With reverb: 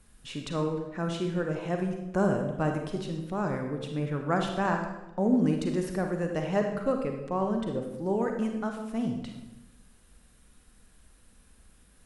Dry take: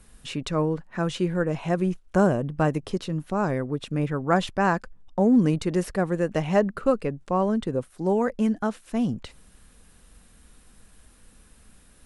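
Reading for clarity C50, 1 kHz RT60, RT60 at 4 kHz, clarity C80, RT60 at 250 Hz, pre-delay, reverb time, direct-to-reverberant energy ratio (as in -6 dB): 5.0 dB, 0.90 s, 0.75 s, 7.5 dB, 1.2 s, 35 ms, 0.95 s, 3.5 dB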